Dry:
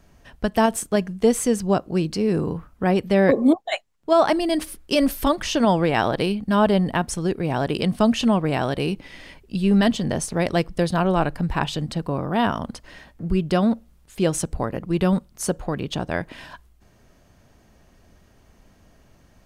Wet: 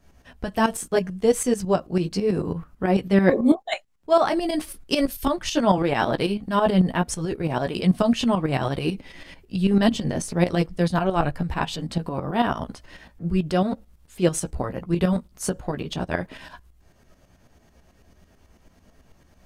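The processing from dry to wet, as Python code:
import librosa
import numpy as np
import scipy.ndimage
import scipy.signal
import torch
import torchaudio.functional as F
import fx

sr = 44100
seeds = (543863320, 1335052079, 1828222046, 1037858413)

y = fx.chorus_voices(x, sr, voices=4, hz=0.39, base_ms=14, depth_ms=3.1, mix_pct=35)
y = fx.tremolo_shape(y, sr, shape='saw_up', hz=9.1, depth_pct=65)
y = fx.band_widen(y, sr, depth_pct=70, at=(5.07, 5.78))
y = y * 10.0 ** (4.0 / 20.0)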